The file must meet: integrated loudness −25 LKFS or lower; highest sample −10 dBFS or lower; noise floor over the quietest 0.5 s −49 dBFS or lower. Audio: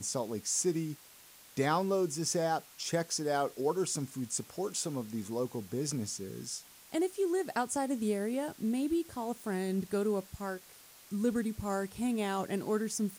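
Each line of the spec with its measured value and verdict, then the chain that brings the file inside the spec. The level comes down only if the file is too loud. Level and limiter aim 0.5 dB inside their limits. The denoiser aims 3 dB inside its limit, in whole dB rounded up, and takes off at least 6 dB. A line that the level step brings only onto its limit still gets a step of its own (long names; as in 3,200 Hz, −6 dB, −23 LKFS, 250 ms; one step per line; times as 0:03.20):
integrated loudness −34.0 LKFS: in spec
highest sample −17.0 dBFS: in spec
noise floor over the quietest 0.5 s −56 dBFS: in spec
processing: no processing needed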